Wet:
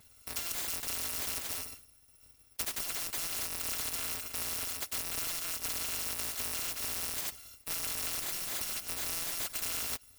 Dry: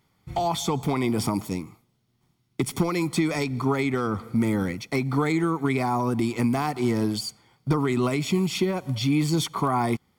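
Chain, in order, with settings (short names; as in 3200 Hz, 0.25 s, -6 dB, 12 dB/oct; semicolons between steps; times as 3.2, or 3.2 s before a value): FFT order left unsorted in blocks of 256 samples; spectral compressor 4:1; gain -7.5 dB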